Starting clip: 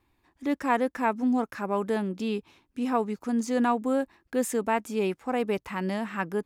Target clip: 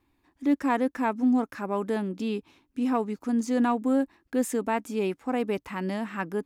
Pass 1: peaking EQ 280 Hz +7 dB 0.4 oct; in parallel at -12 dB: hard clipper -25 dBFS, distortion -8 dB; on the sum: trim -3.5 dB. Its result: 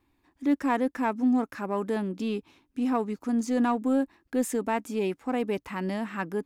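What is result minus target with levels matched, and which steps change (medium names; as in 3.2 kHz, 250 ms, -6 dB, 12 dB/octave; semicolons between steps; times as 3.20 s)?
hard clipper: distortion +11 dB
change: hard clipper -17.5 dBFS, distortion -19 dB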